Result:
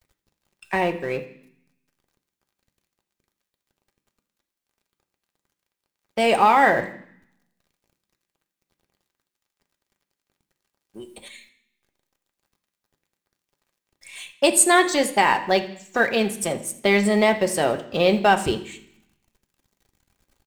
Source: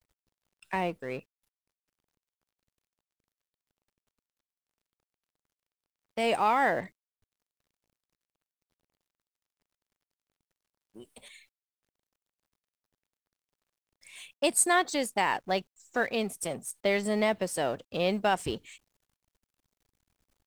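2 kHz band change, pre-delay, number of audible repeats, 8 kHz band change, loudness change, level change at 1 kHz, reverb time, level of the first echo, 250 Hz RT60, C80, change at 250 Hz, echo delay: +9.5 dB, 3 ms, 3, +8.5 dB, +9.0 dB, +9.0 dB, 0.60 s, −18.5 dB, 0.85 s, 15.0 dB, +9.5 dB, 82 ms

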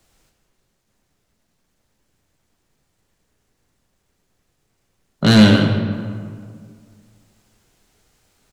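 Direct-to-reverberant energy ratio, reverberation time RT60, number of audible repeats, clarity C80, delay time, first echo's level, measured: 3.5 dB, 2.0 s, 1, 6.0 dB, 163 ms, −13.0 dB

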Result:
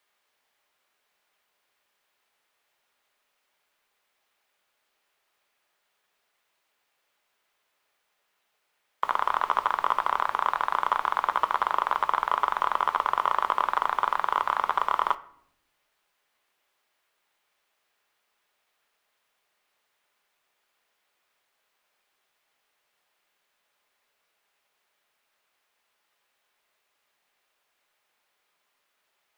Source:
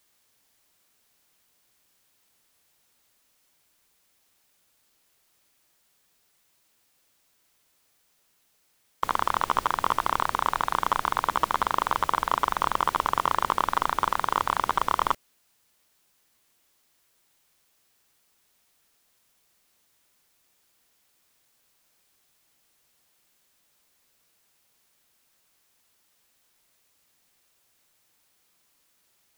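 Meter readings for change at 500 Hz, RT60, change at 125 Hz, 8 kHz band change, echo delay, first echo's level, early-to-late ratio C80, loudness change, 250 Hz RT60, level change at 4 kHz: −2.0 dB, 0.70 s, below −10 dB, below −10 dB, no echo audible, no echo audible, 21.0 dB, 0.0 dB, 1.2 s, −4.0 dB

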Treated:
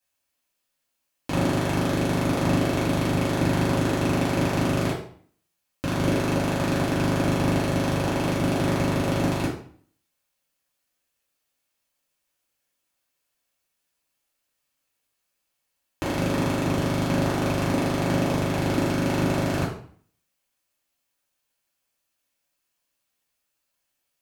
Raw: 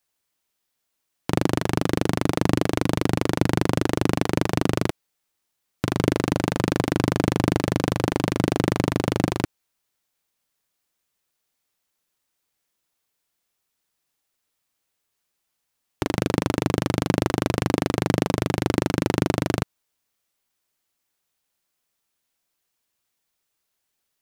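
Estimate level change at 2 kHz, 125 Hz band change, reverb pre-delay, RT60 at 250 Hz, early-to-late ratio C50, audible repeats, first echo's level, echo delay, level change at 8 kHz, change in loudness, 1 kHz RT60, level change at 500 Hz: +0.5 dB, 0.0 dB, 3 ms, 0.60 s, 6.0 dB, no echo audible, no echo audible, no echo audible, −0.5 dB, −0.5 dB, 0.50 s, −0.5 dB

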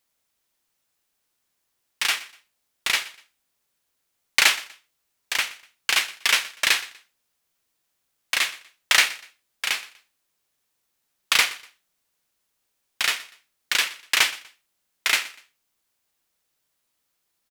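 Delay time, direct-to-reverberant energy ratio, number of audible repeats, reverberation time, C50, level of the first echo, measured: 122 ms, no reverb audible, 2, no reverb audible, no reverb audible, −19.5 dB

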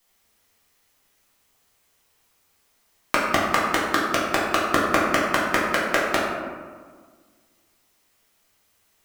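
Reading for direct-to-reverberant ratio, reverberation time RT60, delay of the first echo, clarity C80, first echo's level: −6.0 dB, 1.6 s, no echo audible, 2.5 dB, no echo audible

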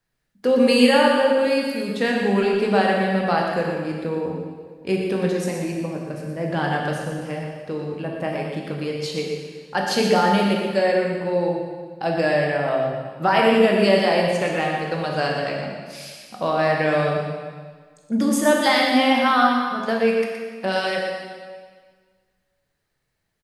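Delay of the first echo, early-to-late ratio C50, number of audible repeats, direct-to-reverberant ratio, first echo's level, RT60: 119 ms, 1.0 dB, 1, −1.0 dB, −7.0 dB, 1.6 s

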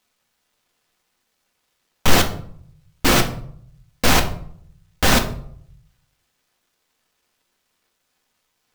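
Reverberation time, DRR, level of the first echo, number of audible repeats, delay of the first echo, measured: 0.60 s, 3.5 dB, no echo audible, no echo audible, no echo audible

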